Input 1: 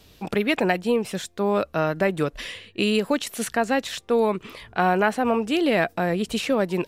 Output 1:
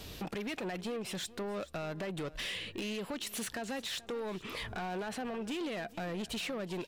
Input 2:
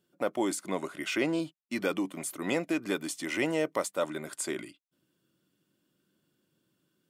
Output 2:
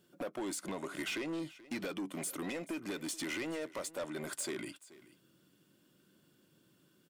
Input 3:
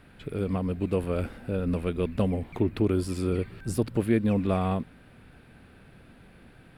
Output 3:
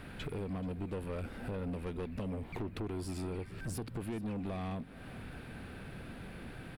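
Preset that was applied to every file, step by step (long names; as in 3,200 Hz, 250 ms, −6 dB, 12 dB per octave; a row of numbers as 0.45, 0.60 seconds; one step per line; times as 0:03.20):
dynamic equaliser 3,500 Hz, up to +4 dB, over −42 dBFS, Q 1
brickwall limiter −15 dBFS
downward compressor 5 to 1, threshold −39 dBFS
soft clipping −40 dBFS
on a send: single-tap delay 431 ms −19 dB
on the sum: level +6.5 dB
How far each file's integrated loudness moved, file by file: −14.5, −7.5, −12.5 LU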